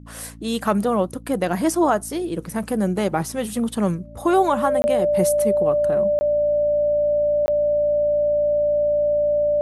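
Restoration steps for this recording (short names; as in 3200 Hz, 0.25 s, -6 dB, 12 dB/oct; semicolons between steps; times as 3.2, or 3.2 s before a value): de-hum 56.4 Hz, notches 5; notch 590 Hz, Q 30; interpolate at 4.82/6.19/7.46, 20 ms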